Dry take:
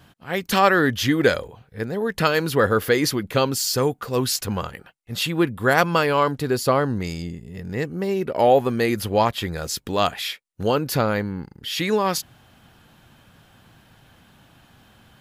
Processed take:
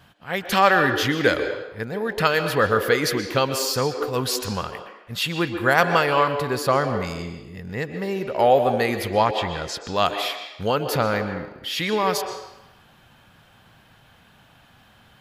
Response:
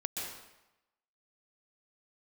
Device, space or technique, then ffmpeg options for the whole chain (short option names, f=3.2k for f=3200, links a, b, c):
filtered reverb send: -filter_complex "[0:a]asettb=1/sr,asplit=3[a][b][c];[a]atrim=end=9.134[d];[b]atrim=start=9.13:end=9.96,asetpts=PTS-STARTPTS,afade=t=in:d=0.004:c=qsin,afade=t=out:st=0.826:d=0.004:c=qsin,lowpass=6.8k[e];[c]atrim=start=9.956[f];[d][e]acrossfade=d=0.004:c1=hsin:c2=qsin[g];[g][f]acrossfade=d=0.004:c1=qsin:c2=hsin,asplit=2[h][i];[i]highpass=f=310:w=0.5412,highpass=f=310:w=1.3066,lowpass=5.1k[j];[1:a]atrim=start_sample=2205[k];[j][k]afir=irnorm=-1:irlink=0,volume=-5dB[l];[h][l]amix=inputs=2:normalize=0,volume=-2.5dB"